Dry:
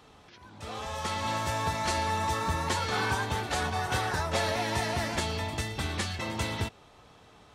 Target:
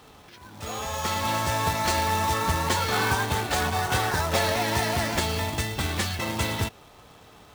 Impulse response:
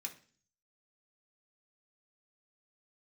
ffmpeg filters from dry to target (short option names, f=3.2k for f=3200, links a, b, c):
-filter_complex "[0:a]asettb=1/sr,asplit=3[a][b][c];[a]atrim=end=0.664[d];[b]atrim=start=0.66:end=1.19,asetpts=PTS-STARTPTS,afade=t=in:d=0.004:c=qsin,afade=t=out:st=0.526:d=0.004:c=qsin,aeval=exprs='val(0)+0.00501*sin(2*PI*6700*n/s)':c=same[e];[c]atrim=start=1.186[f];[d][e]acrossfade=d=0.004:c1=hsin:c2=qsin[g];[g][f]acrossfade=d=0.004:c1=qsin:c2=hsin,acontrast=61,acrusher=bits=2:mode=log:mix=0:aa=0.000001,volume=-2dB"